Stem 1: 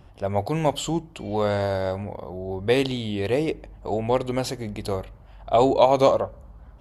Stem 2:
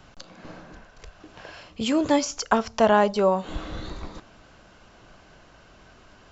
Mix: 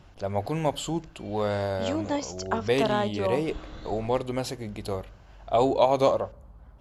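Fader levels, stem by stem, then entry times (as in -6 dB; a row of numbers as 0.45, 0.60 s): -4.0, -8.0 dB; 0.00, 0.00 s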